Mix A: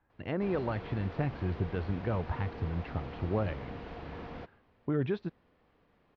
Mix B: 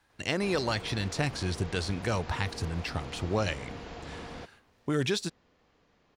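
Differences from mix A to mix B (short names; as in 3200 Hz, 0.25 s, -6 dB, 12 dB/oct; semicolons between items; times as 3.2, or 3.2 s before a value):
speech: remove tape spacing loss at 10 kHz 39 dB; master: remove air absorption 280 m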